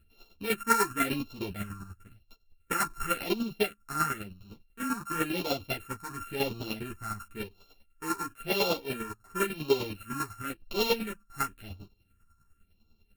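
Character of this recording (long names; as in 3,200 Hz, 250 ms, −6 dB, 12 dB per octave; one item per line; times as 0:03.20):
a buzz of ramps at a fixed pitch in blocks of 32 samples
phaser sweep stages 4, 0.95 Hz, lowest notch 530–1,700 Hz
chopped level 10 Hz, depth 60%, duty 20%
a shimmering, thickened sound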